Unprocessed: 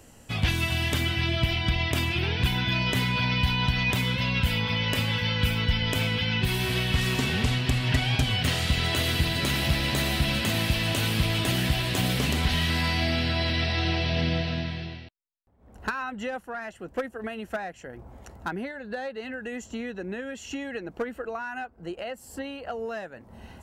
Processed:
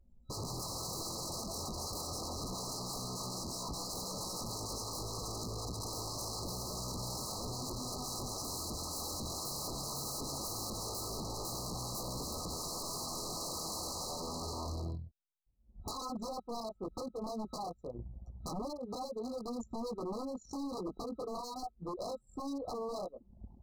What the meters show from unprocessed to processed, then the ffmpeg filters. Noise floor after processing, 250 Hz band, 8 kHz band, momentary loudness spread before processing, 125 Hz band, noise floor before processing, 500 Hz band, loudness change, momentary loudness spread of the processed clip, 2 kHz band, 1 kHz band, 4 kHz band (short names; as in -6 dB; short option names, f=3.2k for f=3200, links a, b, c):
-64 dBFS, -12.5 dB, -0.5 dB, 12 LU, -19.0 dB, -53 dBFS, -8.5 dB, -13.0 dB, 5 LU, under -40 dB, -8.0 dB, -14.5 dB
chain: -af "flanger=delay=16.5:depth=6.3:speed=0.16,acompressor=threshold=-29dB:ratio=16,asoftclip=type=tanh:threshold=-24.5dB,anlmdn=0.398,adynamicequalizer=threshold=0.00251:dfrequency=130:dqfactor=7.5:tfrequency=130:tqfactor=7.5:attack=5:release=100:ratio=0.375:range=3:mode=cutabove:tftype=bell,aeval=exprs='0.0133*(abs(mod(val(0)/0.0133+3,4)-2)-1)':c=same,afftfilt=real='re*(1-between(b*sr/4096,1300,3900))':imag='im*(1-between(b*sr/4096,1300,3900))':win_size=4096:overlap=0.75,volume=4dB"